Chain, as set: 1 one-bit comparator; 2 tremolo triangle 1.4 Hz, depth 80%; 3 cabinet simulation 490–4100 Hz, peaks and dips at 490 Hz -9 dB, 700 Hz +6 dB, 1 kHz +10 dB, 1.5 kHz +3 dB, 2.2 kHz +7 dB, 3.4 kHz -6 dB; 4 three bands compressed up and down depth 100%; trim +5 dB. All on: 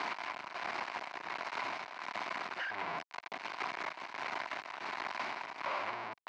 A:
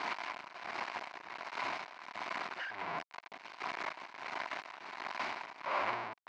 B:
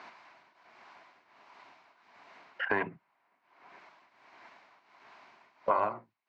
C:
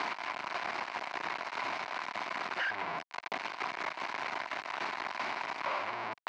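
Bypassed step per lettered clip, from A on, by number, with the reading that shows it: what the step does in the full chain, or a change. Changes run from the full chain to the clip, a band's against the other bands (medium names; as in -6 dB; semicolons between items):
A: 4, crest factor change +2.0 dB; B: 1, crest factor change +9.0 dB; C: 2, loudness change +3.0 LU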